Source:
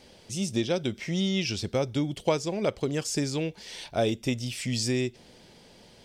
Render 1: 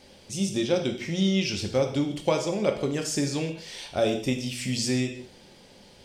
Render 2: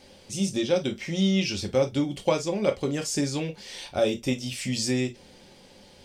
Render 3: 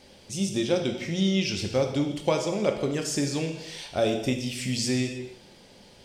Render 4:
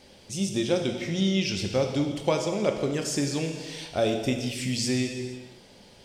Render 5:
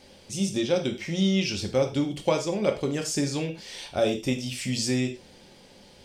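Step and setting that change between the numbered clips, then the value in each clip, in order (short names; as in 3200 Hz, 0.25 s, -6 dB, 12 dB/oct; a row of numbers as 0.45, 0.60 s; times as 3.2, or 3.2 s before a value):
non-linear reverb, gate: 220, 80, 340, 530, 140 ms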